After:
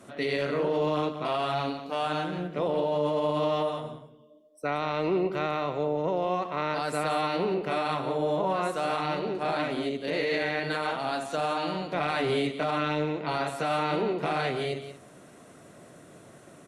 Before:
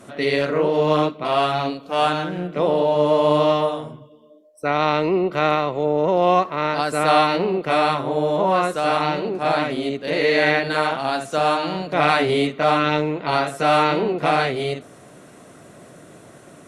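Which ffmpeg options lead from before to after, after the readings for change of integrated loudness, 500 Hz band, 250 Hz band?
−9.0 dB, −8.5 dB, −7.5 dB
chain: -filter_complex "[0:a]acrossover=split=120[link_01][link_02];[link_02]alimiter=limit=-13dB:level=0:latency=1:release=20[link_03];[link_01][link_03]amix=inputs=2:normalize=0,aecho=1:1:180:0.282,volume=-6.5dB"

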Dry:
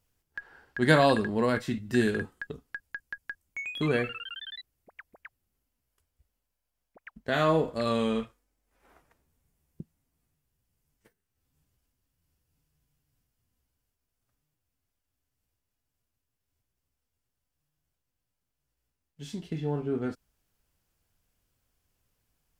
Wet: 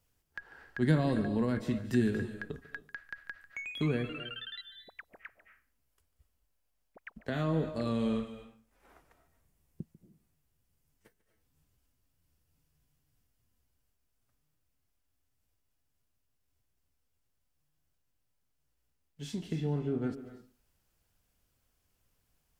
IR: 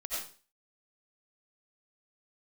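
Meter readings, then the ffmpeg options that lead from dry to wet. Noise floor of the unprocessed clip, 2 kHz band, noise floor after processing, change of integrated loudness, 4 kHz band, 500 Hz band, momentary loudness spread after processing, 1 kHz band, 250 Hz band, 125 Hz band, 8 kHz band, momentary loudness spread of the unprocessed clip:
−84 dBFS, −9.0 dB, −78 dBFS, −5.5 dB, −7.0 dB, −8.0 dB, 20 LU, −12.0 dB, −2.0 dB, 0.0 dB, can't be measured, 18 LU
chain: -filter_complex "[0:a]acrossover=split=310[link_01][link_02];[link_02]acompressor=threshold=-40dB:ratio=3[link_03];[link_01][link_03]amix=inputs=2:normalize=0,asplit=2[link_04][link_05];[1:a]atrim=start_sample=2205,adelay=145[link_06];[link_05][link_06]afir=irnorm=-1:irlink=0,volume=-13dB[link_07];[link_04][link_07]amix=inputs=2:normalize=0"

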